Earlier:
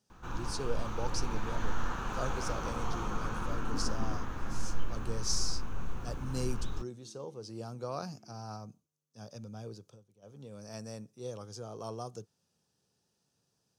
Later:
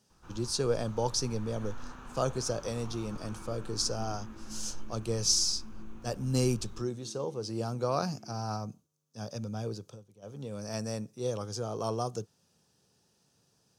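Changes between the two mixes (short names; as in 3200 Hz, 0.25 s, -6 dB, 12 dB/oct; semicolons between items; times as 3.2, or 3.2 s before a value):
speech +8.0 dB; first sound -11.0 dB; second sound +8.0 dB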